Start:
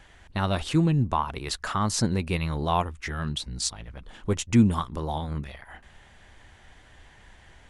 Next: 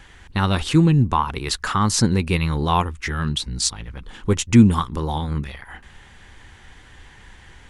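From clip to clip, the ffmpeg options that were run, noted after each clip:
-af "equalizer=f=640:w=4.3:g=-10.5,volume=2.24"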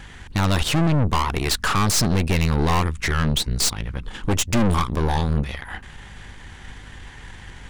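-af "aeval=exprs='(tanh(20*val(0)+0.75)-tanh(0.75))/20':c=same,aeval=exprs='val(0)+0.00224*(sin(2*PI*50*n/s)+sin(2*PI*2*50*n/s)/2+sin(2*PI*3*50*n/s)/3+sin(2*PI*4*50*n/s)/4+sin(2*PI*5*50*n/s)/5)':c=same,volume=2.82"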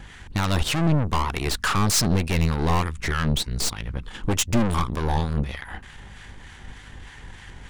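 -filter_complex "[0:a]acrossover=split=940[s0][s1];[s0]aeval=exprs='val(0)*(1-0.5/2+0.5/2*cos(2*PI*3.3*n/s))':c=same[s2];[s1]aeval=exprs='val(0)*(1-0.5/2-0.5/2*cos(2*PI*3.3*n/s))':c=same[s3];[s2][s3]amix=inputs=2:normalize=0"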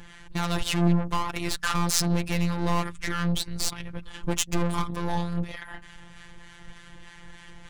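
-af "afftfilt=real='hypot(re,im)*cos(PI*b)':imag='0':win_size=1024:overlap=0.75"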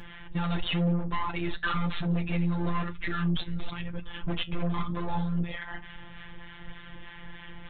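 -af "aresample=8000,asoftclip=type=tanh:threshold=0.0596,aresample=44100,flanger=delay=8.8:depth=3.8:regen=-66:speed=0.99:shape=triangular,volume=2.24"

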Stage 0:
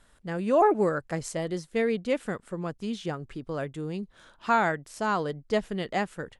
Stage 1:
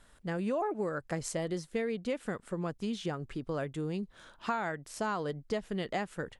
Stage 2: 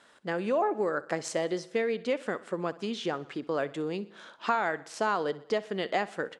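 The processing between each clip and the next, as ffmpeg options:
-af "acompressor=threshold=0.0316:ratio=6"
-af "highpass=300,lowpass=6100,aecho=1:1:63|126|189|252|315:0.112|0.0617|0.0339|0.0187|0.0103,volume=2"

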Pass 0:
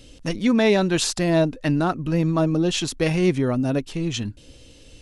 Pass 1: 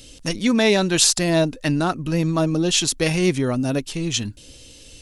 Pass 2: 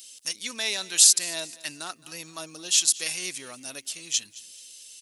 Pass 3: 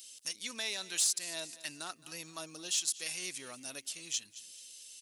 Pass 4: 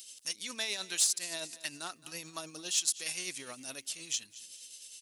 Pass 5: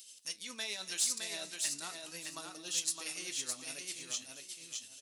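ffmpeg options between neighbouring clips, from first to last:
-af "highshelf=f=3500:g=11.5"
-af "aderivative,aecho=1:1:217|434|651:0.1|0.039|0.0152,volume=1.26"
-af "acompressor=threshold=0.0224:ratio=1.5,asoftclip=type=tanh:threshold=0.188,volume=0.562"
-af "tremolo=f=9.7:d=0.44,volume=1.5"
-af "flanger=delay=8.3:depth=8.9:regen=-66:speed=0.42:shape=triangular,aecho=1:1:613|1226|1839:0.631|0.139|0.0305"

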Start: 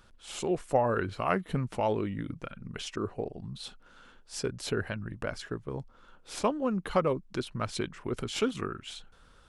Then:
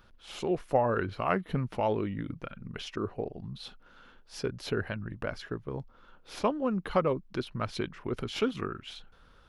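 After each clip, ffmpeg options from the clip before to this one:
-af "equalizer=f=8100:w=1.6:g=-13.5"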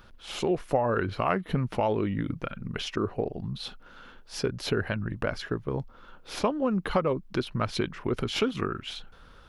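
-af "acompressor=threshold=0.0316:ratio=2.5,volume=2.11"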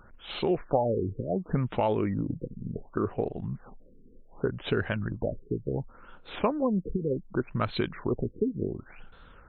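-af "afftfilt=real='re*lt(b*sr/1024,470*pow(4300/470,0.5+0.5*sin(2*PI*0.68*pts/sr)))':imag='im*lt(b*sr/1024,470*pow(4300/470,0.5+0.5*sin(2*PI*0.68*pts/sr)))':win_size=1024:overlap=0.75"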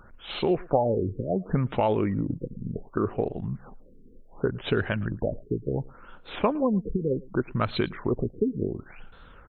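-af "aecho=1:1:111:0.0668,volume=1.33"

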